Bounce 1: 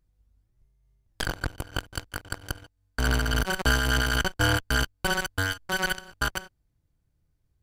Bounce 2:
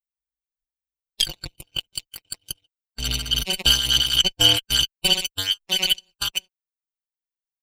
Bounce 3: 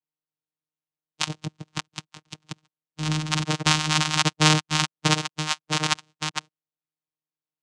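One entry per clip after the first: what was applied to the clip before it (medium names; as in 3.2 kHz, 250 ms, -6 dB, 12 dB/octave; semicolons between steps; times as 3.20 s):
expander on every frequency bin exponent 2; resonant high shelf 2.1 kHz +11.5 dB, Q 3; comb 5.7 ms, depth 48%
vocoder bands 4, saw 154 Hz; trim -2 dB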